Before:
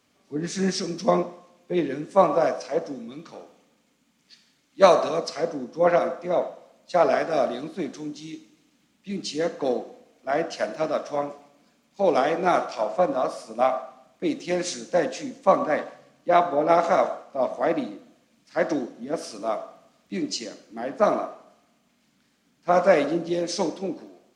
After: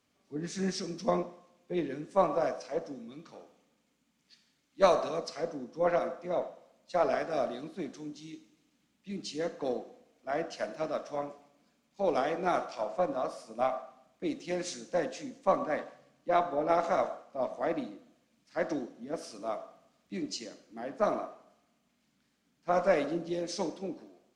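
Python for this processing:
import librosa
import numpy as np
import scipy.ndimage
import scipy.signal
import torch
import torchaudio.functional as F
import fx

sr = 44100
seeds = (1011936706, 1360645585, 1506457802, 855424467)

y = fx.cheby_harmonics(x, sr, harmonics=(4,), levels_db=(-31,), full_scale_db=-1.0)
y = fx.low_shelf(y, sr, hz=84.0, db=6.0)
y = y * librosa.db_to_amplitude(-8.5)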